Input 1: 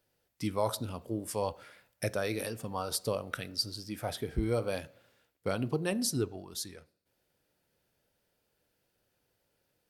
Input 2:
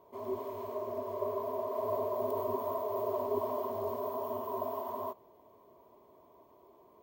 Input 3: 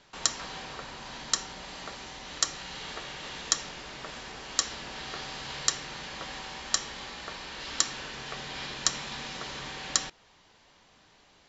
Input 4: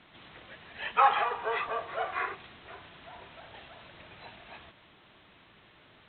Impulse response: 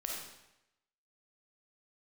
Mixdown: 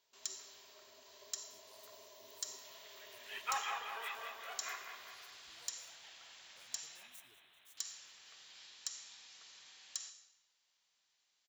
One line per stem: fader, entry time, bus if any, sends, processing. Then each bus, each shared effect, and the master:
-18.5 dB, 1.10 s, no send, echo send -16 dB, median filter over 9 samples; high shelf 5800 Hz +9.5 dB
-10.0 dB, 0.00 s, no send, no echo send, tilt shelf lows +6.5 dB, about 1100 Hz
-15.0 dB, 0.00 s, muted 6.97–7.77, send -3.5 dB, no echo send, dry
+0.5 dB, 2.50 s, no send, echo send -6.5 dB, dry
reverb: on, RT60 0.90 s, pre-delay 10 ms
echo: feedback echo 0.195 s, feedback 54%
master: pre-emphasis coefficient 0.97; overloaded stage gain 28.5 dB

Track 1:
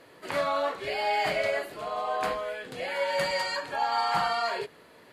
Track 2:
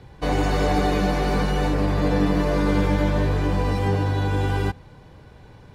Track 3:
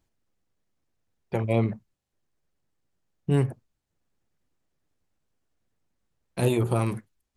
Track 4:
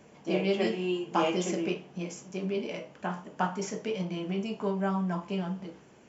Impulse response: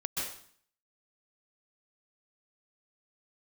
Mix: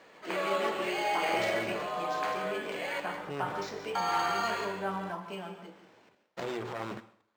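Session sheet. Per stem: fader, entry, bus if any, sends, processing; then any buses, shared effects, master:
-5.0 dB, 0.00 s, muted 3–3.95, bus A, send -6 dB, dry
-13.5 dB, 0.40 s, bus B, no send, limiter -17.5 dBFS, peak gain reduction 9.5 dB
-1.0 dB, 0.00 s, bus B, send -22.5 dB, high shelf 3100 Hz +12 dB; running maximum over 17 samples
-3.5 dB, 0.00 s, bus A, send -10 dB, dry
bus A: 0.0 dB, limiter -24 dBFS, peak gain reduction 8.5 dB
bus B: 0.0 dB, transient shaper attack -2 dB, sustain +6 dB; limiter -23 dBFS, peak gain reduction 10.5 dB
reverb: on, RT60 0.55 s, pre-delay 0.117 s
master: weighting filter A; decimation joined by straight lines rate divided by 4×

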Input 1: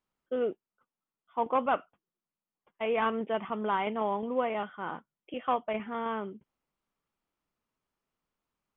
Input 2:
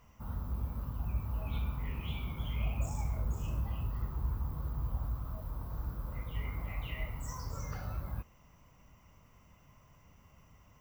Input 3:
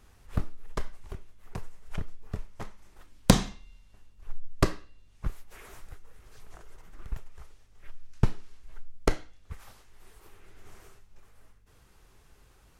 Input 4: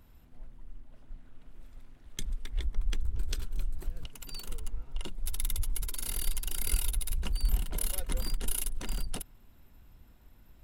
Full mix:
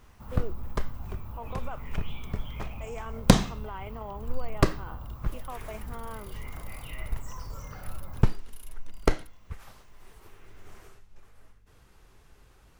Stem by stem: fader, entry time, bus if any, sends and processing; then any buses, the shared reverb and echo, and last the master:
-7.0 dB, 0.00 s, bus A, no send, dry
+0.5 dB, 0.00 s, bus A, no send, dry
+2.0 dB, 0.00 s, no bus, no send, dry
-15.0 dB, 0.05 s, no bus, no send, dry
bus A: 0.0 dB, low shelf 190 Hz -5.5 dB; limiter -29.5 dBFS, peak gain reduction 8 dB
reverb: off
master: bell 9700 Hz -3.5 dB 2 oct

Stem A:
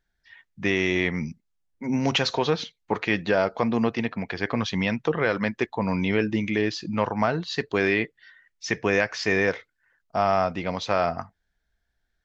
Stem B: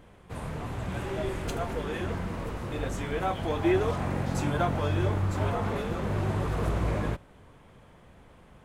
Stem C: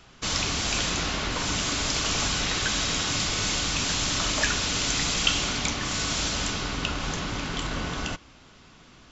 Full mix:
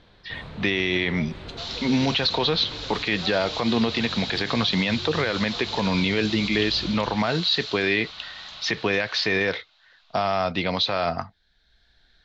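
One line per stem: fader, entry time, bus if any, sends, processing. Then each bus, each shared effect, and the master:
+2.5 dB, 0.00 s, no send, three-band squash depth 40%
-3.0 dB, 0.00 s, no send, compressor, threshold -32 dBFS, peak gain reduction 11.5 dB
-12.5 dB, 1.35 s, no send, Chebyshev high-pass 580 Hz, order 10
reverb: off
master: synth low-pass 4000 Hz, resonance Q 4.9; limiter -12.5 dBFS, peak gain reduction 10 dB

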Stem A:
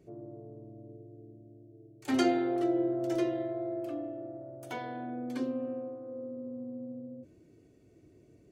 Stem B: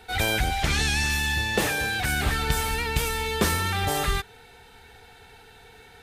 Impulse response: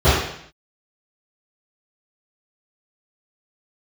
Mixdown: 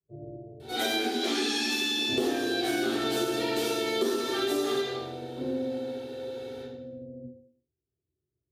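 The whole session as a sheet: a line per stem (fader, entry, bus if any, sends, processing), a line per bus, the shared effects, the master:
-9.0 dB, 0.00 s, send -15 dB, gate -46 dBFS, range -36 dB; inverse Chebyshev low-pass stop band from 4600 Hz, stop band 80 dB
-4.5 dB, 0.60 s, send -10 dB, Chebyshev high-pass 230 Hz, order 8; band shelf 1100 Hz -10.5 dB 2.8 oct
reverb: on, RT60 0.65 s, pre-delay 3 ms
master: compressor 6:1, threshold -25 dBFS, peak gain reduction 12 dB

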